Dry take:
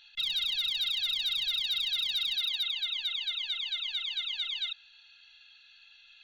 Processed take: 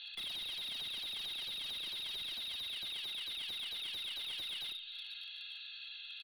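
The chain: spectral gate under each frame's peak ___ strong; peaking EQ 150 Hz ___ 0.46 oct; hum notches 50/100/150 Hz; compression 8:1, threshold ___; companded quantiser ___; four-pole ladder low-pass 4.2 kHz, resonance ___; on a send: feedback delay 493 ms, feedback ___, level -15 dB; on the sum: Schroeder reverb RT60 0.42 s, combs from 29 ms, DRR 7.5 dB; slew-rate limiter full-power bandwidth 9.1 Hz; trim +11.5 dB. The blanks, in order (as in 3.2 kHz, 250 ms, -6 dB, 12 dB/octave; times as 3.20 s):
-35 dB, -6.5 dB, -45 dBFS, 8-bit, 60%, 49%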